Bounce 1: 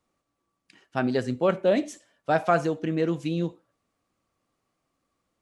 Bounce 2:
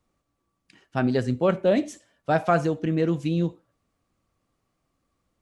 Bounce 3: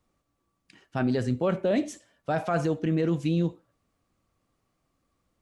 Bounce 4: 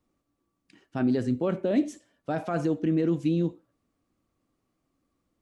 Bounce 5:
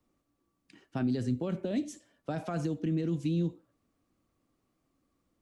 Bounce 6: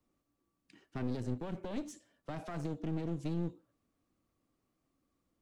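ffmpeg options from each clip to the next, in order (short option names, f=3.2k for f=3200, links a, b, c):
-af "lowshelf=f=140:g=11"
-af "alimiter=limit=-17dB:level=0:latency=1:release=19"
-af "equalizer=f=290:w=1.4:g=8,volume=-4.5dB"
-filter_complex "[0:a]acrossover=split=200|3000[a][b][c];[b]acompressor=threshold=-34dB:ratio=6[d];[a][d][c]amix=inputs=3:normalize=0"
-af "aeval=exprs='clip(val(0),-1,0.00944)':c=same,volume=-4dB"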